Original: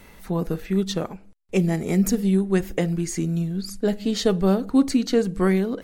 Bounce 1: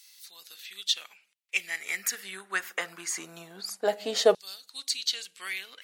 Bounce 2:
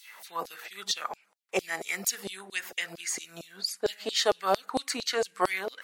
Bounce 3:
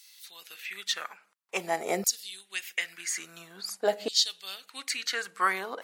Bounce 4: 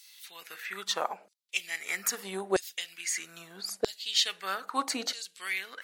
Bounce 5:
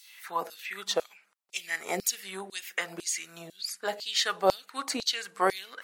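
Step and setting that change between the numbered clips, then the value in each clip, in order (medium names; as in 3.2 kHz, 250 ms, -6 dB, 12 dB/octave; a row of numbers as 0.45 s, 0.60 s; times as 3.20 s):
LFO high-pass, rate: 0.23 Hz, 4.4 Hz, 0.49 Hz, 0.78 Hz, 2 Hz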